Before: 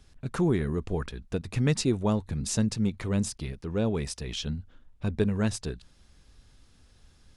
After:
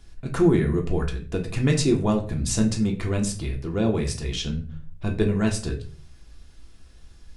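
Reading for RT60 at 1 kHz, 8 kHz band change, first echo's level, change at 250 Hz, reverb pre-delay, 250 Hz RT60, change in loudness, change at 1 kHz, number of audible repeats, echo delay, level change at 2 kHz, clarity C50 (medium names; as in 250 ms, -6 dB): 0.35 s, +4.5 dB, no echo, +5.0 dB, 3 ms, 0.60 s, +5.0 dB, +4.5 dB, no echo, no echo, +5.0 dB, 11.0 dB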